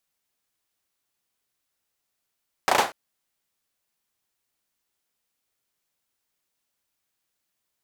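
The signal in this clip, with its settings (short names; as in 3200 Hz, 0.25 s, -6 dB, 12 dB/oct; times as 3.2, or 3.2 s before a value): hand clap length 0.24 s, apart 34 ms, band 750 Hz, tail 0.28 s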